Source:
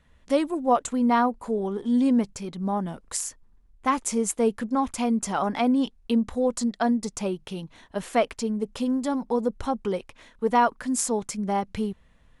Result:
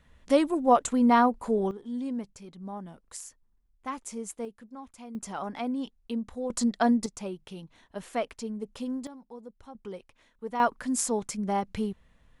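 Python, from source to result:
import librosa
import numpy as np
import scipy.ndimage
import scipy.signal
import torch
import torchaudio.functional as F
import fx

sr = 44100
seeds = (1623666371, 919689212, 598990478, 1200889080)

y = fx.gain(x, sr, db=fx.steps((0.0, 0.5), (1.71, -12.0), (4.45, -19.5), (5.15, -9.5), (6.5, 0.0), (7.06, -8.0), (9.07, -20.0), (9.75, -12.5), (10.6, -2.5)))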